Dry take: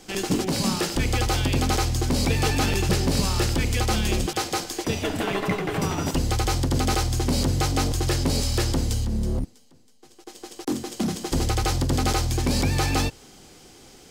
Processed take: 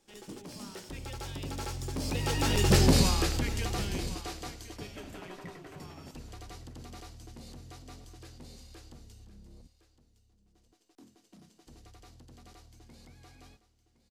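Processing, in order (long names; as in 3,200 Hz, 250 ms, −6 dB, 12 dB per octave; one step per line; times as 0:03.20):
source passing by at 0:02.85, 23 m/s, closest 4.7 metres
hum removal 109.2 Hz, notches 2
on a send: single-tap delay 1,062 ms −15.5 dB
on the sum: level +1.5 dB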